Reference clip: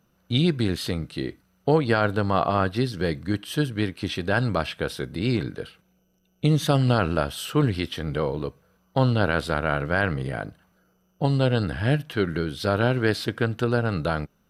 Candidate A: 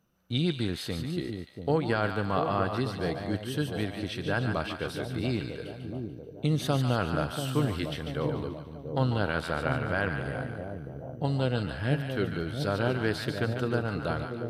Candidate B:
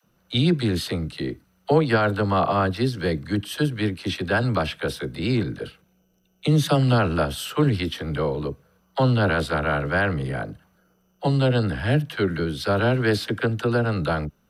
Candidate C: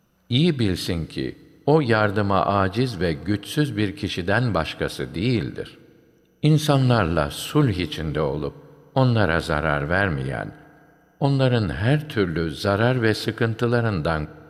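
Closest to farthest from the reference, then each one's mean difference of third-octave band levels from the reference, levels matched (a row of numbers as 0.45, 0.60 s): C, B, A; 1.0, 2.5, 4.5 dB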